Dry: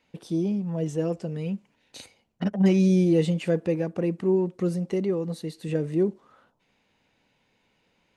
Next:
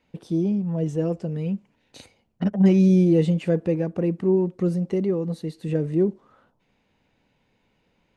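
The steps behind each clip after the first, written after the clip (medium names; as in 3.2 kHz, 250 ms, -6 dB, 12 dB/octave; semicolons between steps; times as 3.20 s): tilt EQ -1.5 dB/octave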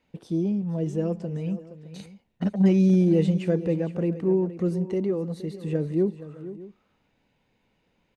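multi-tap echo 470/612 ms -14.5/-19.5 dB; trim -2.5 dB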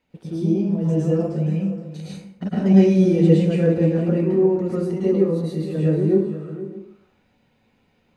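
plate-style reverb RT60 0.58 s, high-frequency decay 0.7×, pre-delay 95 ms, DRR -7.5 dB; trim -2 dB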